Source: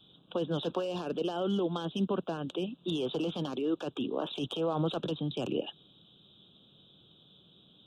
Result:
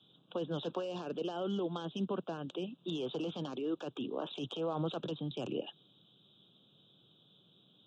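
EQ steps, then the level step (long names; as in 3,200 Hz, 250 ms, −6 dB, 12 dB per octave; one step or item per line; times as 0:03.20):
elliptic band-pass filter 110–7,200 Hz, stop band 40 dB
−4.5 dB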